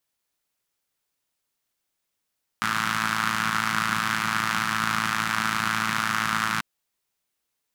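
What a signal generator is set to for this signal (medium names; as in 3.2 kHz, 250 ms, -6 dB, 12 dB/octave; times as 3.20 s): four-cylinder engine model, steady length 3.99 s, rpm 3300, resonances 180/1300 Hz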